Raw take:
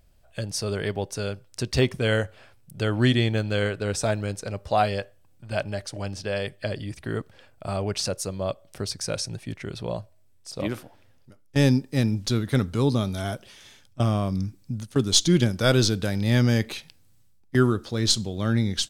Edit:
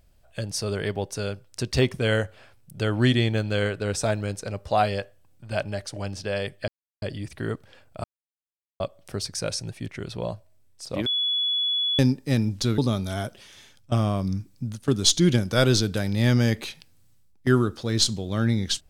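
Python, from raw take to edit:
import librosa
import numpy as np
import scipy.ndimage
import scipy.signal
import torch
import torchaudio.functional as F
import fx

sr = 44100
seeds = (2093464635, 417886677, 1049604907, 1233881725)

y = fx.edit(x, sr, fx.insert_silence(at_s=6.68, length_s=0.34),
    fx.silence(start_s=7.7, length_s=0.76),
    fx.bleep(start_s=10.72, length_s=0.93, hz=3400.0, db=-21.5),
    fx.cut(start_s=12.44, length_s=0.42), tone=tone)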